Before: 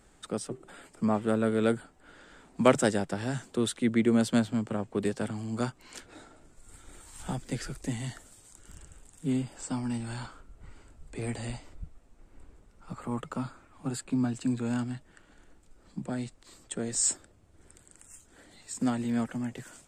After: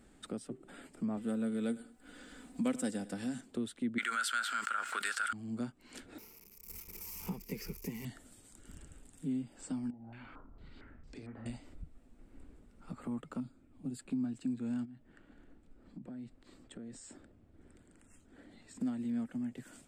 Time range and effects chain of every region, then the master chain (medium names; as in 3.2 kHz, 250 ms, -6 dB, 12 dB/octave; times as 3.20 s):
1.17–3.41 s: treble shelf 4.7 kHz +11.5 dB + comb 4 ms, depth 49% + feedback delay 99 ms, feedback 26%, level -19.5 dB
3.98–5.33 s: resonant high-pass 1.4 kHz, resonance Q 15 + treble shelf 2.1 kHz +11.5 dB + level flattener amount 70%
6.18–8.05 s: zero-crossing glitches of -35 dBFS + gate -43 dBFS, range -9 dB + rippled EQ curve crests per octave 0.81, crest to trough 16 dB
9.90–11.46 s: compression, threshold -46 dBFS + doubling 36 ms -8.5 dB + step-sequenced low-pass 4.4 Hz 760–5400 Hz
13.40–13.99 s: peaking EQ 1.2 kHz -13.5 dB 2 oct + tape noise reduction on one side only decoder only
14.85–18.81 s: low-pass 2.2 kHz 6 dB/octave + compression, threshold -44 dBFS
whole clip: fifteen-band graphic EQ 250 Hz +9 dB, 1 kHz -4 dB, 6.3 kHz -5 dB; compression 2:1, threshold -40 dBFS; trim -3 dB